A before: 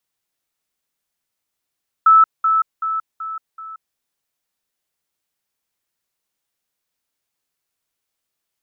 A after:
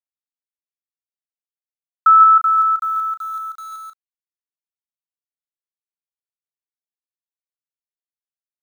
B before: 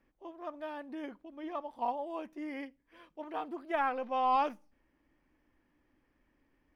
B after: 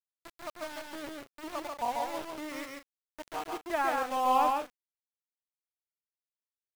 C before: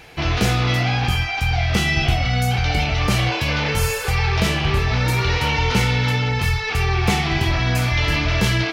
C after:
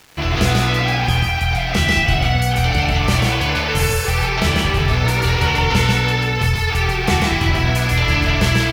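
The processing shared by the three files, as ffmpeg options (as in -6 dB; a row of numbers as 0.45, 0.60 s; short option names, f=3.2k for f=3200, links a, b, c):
-af "aeval=exprs='val(0)*gte(abs(val(0)),0.0119)':c=same,aecho=1:1:139.9|174.9:0.708|0.251,volume=1dB"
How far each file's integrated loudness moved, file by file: +3.0, +3.0, +2.5 LU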